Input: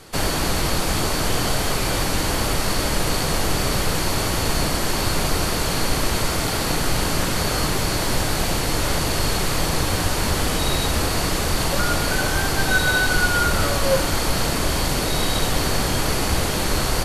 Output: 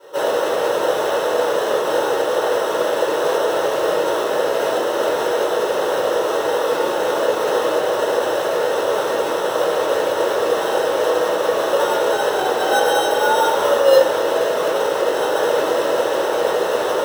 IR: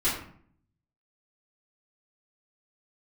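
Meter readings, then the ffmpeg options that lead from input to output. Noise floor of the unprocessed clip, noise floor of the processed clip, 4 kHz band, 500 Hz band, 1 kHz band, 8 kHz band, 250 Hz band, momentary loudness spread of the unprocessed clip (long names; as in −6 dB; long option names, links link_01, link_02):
−23 dBFS, −21 dBFS, −4.0 dB, +11.0 dB, +5.0 dB, −8.0 dB, −3.0 dB, 3 LU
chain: -filter_complex "[0:a]acrusher=samples=19:mix=1:aa=0.000001,highpass=frequency=540:width_type=q:width=3.5[link_01];[1:a]atrim=start_sample=2205,asetrate=57330,aresample=44100[link_02];[link_01][link_02]afir=irnorm=-1:irlink=0,volume=-7.5dB"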